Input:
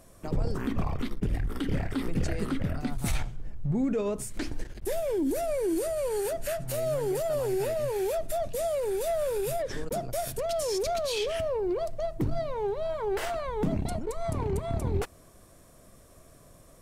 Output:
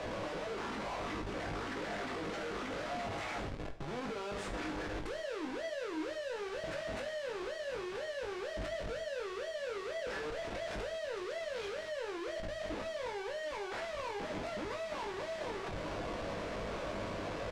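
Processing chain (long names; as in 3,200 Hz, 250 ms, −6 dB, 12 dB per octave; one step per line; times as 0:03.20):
mu-law and A-law mismatch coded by mu
Bessel high-pass filter 210 Hz, order 4
three-way crossover with the lows and the highs turned down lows −22 dB, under 420 Hz, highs −15 dB, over 2,800 Hz
downward compressor 6 to 1, threshold −38 dBFS, peak gain reduction 10.5 dB
comparator with hysteresis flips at −55.5 dBFS
high-frequency loss of the air 94 metres
double-tracking delay 19 ms −5.5 dB
reverb whose tail is shaped and stops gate 190 ms falling, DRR 6 dB
wrong playback speed 25 fps video run at 24 fps
level +1 dB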